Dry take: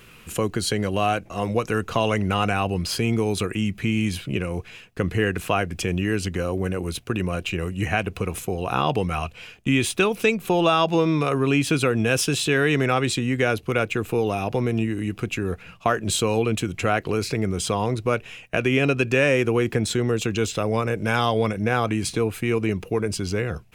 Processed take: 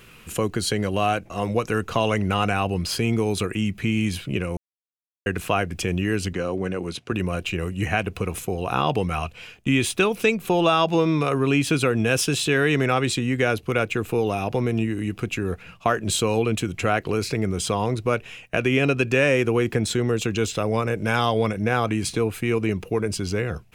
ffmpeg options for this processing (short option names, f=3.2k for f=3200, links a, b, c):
-filter_complex "[0:a]asettb=1/sr,asplit=3[a][b][c];[a]atrim=end=6.334[d];[b]atrim=start=6.33:end=7.12,asetpts=PTS-STARTPTS,afade=t=in:d=0.004:c=qsin,afade=t=out:st=0.786:d=0.004:c=qsin,highpass=130,lowpass=6.7k[e];[c]atrim=start=7.116[f];[d][e]acrossfade=d=0.004:c1=hsin:c2=qsin[g];[g][f]acrossfade=d=0.004:c1=qsin:c2=hsin,asplit=3[h][i][j];[h]atrim=end=4.57,asetpts=PTS-STARTPTS,afade=t=out:st=4.566:d=0.004:c=hsin[k];[i]atrim=start=4.57:end=5.26,asetpts=PTS-STARTPTS,volume=0[l];[j]atrim=start=5.26,asetpts=PTS-STARTPTS,afade=t=in:d=0.004:c=hsin[m];[k][l][m]concat=n=3:v=0:a=1"